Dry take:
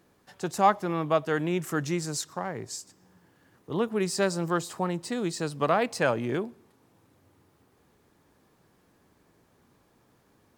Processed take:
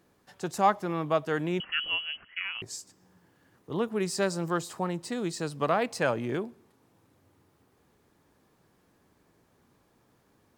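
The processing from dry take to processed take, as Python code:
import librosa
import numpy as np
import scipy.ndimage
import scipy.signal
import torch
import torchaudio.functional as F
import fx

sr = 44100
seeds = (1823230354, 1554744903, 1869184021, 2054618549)

y = fx.freq_invert(x, sr, carrier_hz=3100, at=(1.6, 2.62))
y = F.gain(torch.from_numpy(y), -2.0).numpy()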